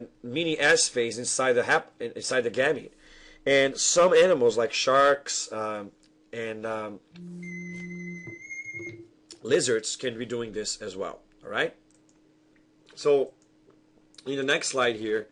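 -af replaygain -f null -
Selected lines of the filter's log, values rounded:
track_gain = +4.5 dB
track_peak = 0.165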